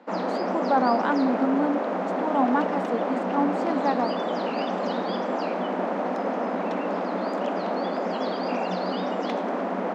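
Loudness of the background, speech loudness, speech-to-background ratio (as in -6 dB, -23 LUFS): -27.5 LUFS, -26.5 LUFS, 1.0 dB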